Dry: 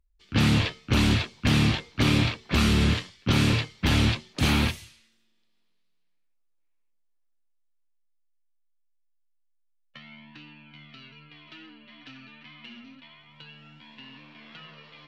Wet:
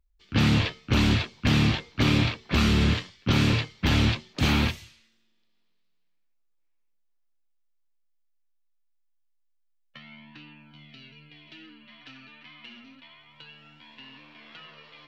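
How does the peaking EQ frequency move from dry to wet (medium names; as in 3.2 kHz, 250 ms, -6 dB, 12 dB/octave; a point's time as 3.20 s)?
peaking EQ -11.5 dB 0.55 oct
10.38 s 10 kHz
10.88 s 1.2 kHz
11.59 s 1.2 kHz
12.12 s 180 Hz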